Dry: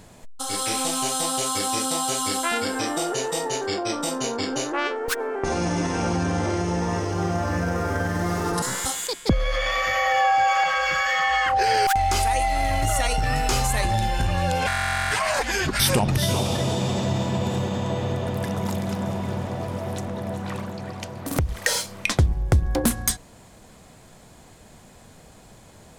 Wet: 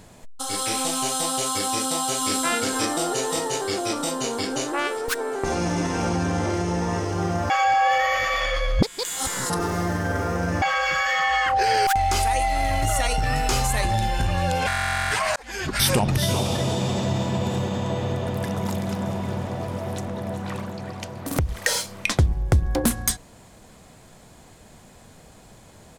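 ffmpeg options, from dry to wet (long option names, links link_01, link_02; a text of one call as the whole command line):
ffmpeg -i in.wav -filter_complex "[0:a]asplit=2[link_01][link_02];[link_02]afade=type=in:start_time=1.67:duration=0.01,afade=type=out:start_time=2.31:duration=0.01,aecho=0:1:540|1080|1620|2160|2700|3240|3780|4320|4860|5400|5940|6480:0.595662|0.416964|0.291874|0.204312|0.143018|0.100113|0.0700791|0.0490553|0.0343387|0.0240371|0.016826|0.0117782[link_03];[link_01][link_03]amix=inputs=2:normalize=0,asplit=4[link_04][link_05][link_06][link_07];[link_04]atrim=end=7.502[link_08];[link_05]atrim=start=7.498:end=10.622,asetpts=PTS-STARTPTS,areverse[link_09];[link_06]atrim=start=10.618:end=15.36,asetpts=PTS-STARTPTS,afade=type=out:start_time=4.738:duration=0.004:curve=hsin[link_10];[link_07]atrim=start=15.36,asetpts=PTS-STARTPTS,afade=type=in:duration=0.45[link_11];[link_08][link_09]acrossfade=duration=0.004:curve1=hsin:curve2=hsin[link_12];[link_10][link_11]concat=n=2:v=0:a=1[link_13];[link_12][link_13]acrossfade=duration=0.004:curve1=hsin:curve2=hsin" out.wav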